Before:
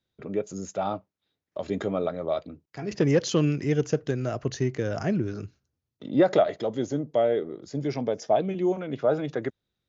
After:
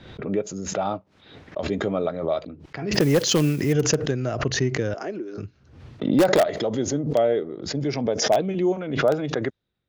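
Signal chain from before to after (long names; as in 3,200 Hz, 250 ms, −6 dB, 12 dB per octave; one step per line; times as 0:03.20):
low-pass that shuts in the quiet parts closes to 2,700 Hz, open at −20 dBFS
0:04.94–0:05.38: four-pole ladder high-pass 290 Hz, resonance 40%
in parallel at −9.5 dB: wrap-around overflow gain 12.5 dB
0:02.93–0:03.73: on the sum: noise that follows the level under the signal 23 dB
background raised ahead of every attack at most 74 dB per second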